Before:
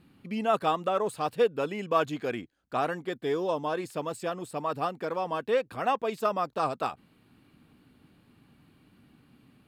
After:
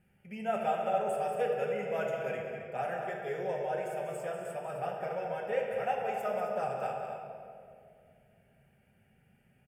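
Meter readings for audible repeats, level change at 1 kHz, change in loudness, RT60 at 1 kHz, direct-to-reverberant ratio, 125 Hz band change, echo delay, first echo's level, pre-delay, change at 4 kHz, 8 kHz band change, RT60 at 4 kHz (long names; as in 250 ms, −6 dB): 2, −4.5 dB, −4.5 dB, 1.9 s, −2.0 dB, −5.0 dB, 192 ms, −8.5 dB, 5 ms, −11.5 dB, −6.0 dB, 1.3 s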